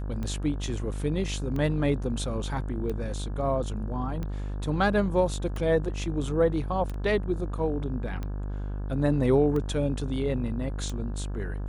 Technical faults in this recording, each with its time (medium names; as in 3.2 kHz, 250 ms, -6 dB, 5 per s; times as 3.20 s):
buzz 50 Hz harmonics 34 -32 dBFS
tick 45 rpm -22 dBFS
6.94 s: dropout 2.8 ms